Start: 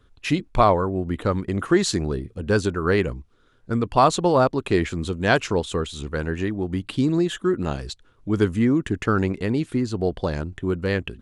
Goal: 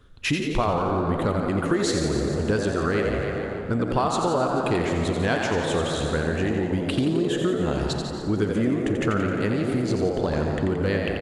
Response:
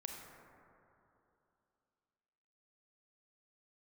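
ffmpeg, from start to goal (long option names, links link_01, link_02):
-filter_complex "[0:a]aecho=1:1:146|292|438|584|730|876:0.282|0.147|0.0762|0.0396|0.0206|0.0107,asplit=2[link_01][link_02];[1:a]atrim=start_sample=2205[link_03];[link_02][link_03]afir=irnorm=-1:irlink=0,volume=-1dB[link_04];[link_01][link_04]amix=inputs=2:normalize=0,acompressor=threshold=-21dB:ratio=6,asplit=2[link_05][link_06];[link_06]asplit=8[link_07][link_08][link_09][link_10][link_11][link_12][link_13][link_14];[link_07]adelay=87,afreqshift=71,volume=-6.5dB[link_15];[link_08]adelay=174,afreqshift=142,volume=-10.8dB[link_16];[link_09]adelay=261,afreqshift=213,volume=-15.1dB[link_17];[link_10]adelay=348,afreqshift=284,volume=-19.4dB[link_18];[link_11]adelay=435,afreqshift=355,volume=-23.7dB[link_19];[link_12]adelay=522,afreqshift=426,volume=-28dB[link_20];[link_13]adelay=609,afreqshift=497,volume=-32.3dB[link_21];[link_14]adelay=696,afreqshift=568,volume=-36.6dB[link_22];[link_15][link_16][link_17][link_18][link_19][link_20][link_21][link_22]amix=inputs=8:normalize=0[link_23];[link_05][link_23]amix=inputs=2:normalize=0"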